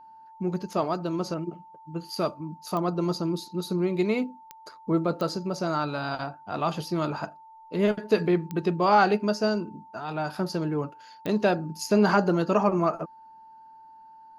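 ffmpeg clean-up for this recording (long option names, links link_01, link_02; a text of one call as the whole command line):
ffmpeg -i in.wav -af "adeclick=threshold=4,bandreject=frequency=890:width=30" out.wav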